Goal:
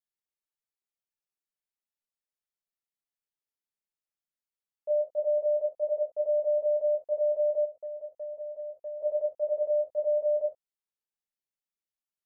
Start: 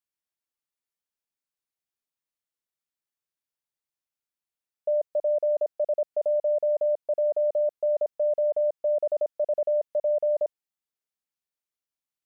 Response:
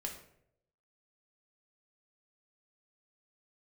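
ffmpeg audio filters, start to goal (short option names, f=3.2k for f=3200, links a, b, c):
-filter_complex "[1:a]atrim=start_sample=2205,atrim=end_sample=3969[a];[0:a][a]afir=irnorm=-1:irlink=0,asplit=3[b][c][d];[b]afade=t=out:st=7.64:d=0.02[e];[c]acompressor=threshold=-31dB:ratio=6,afade=t=in:st=7.64:d=0.02,afade=t=out:st=9:d=0.02[f];[d]afade=t=in:st=9:d=0.02[g];[e][f][g]amix=inputs=3:normalize=0,volume=-6dB"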